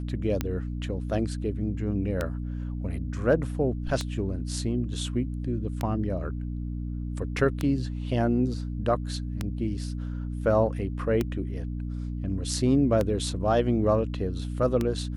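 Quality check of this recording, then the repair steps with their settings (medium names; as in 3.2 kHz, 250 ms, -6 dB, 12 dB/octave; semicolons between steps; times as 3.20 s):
hum 60 Hz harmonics 5 -32 dBFS
tick 33 1/3 rpm -13 dBFS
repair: de-click; de-hum 60 Hz, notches 5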